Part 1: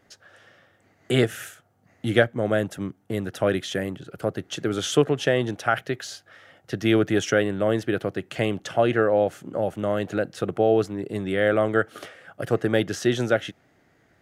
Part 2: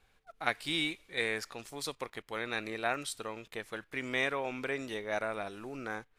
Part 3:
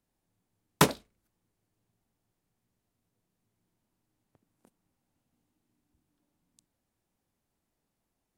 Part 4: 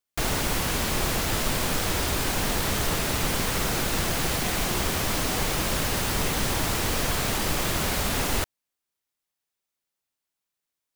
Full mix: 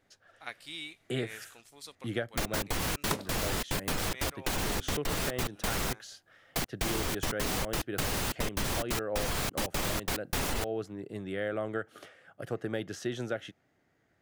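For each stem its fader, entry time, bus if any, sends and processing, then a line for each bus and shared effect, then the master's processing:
-10.5 dB, 0.00 s, no send, dry
-10.5 dB, 0.00 s, no send, tilt shelf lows -3.5 dB, about 1500 Hz
+0.5 dB, 2.30 s, no send, dry
+1.0 dB, 2.20 s, muted 5.93–6.55, no send, spectral gate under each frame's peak -30 dB strong; step gate "xxx.x.xxx.x..x" 179 bpm; bit-crush 6-bit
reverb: off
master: compressor 6:1, threshold -28 dBFS, peak gain reduction 12.5 dB

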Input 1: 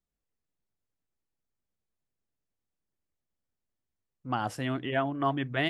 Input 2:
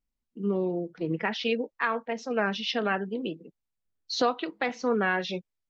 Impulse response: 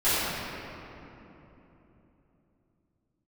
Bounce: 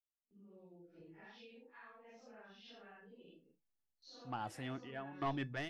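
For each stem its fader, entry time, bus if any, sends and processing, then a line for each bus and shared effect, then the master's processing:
-4.5 dB, 0.00 s, no send, random-step tremolo 2.3 Hz, depth 90%; soft clip -23 dBFS, distortion -14 dB
-17.5 dB, 0.00 s, no send, phase scrambler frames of 0.2 s; gate with hold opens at -44 dBFS; compressor, threshold -36 dBFS, peak gain reduction 14 dB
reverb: off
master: AGC gain up to 7.5 dB; resonator 860 Hz, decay 0.16 s, harmonics all, mix 70%

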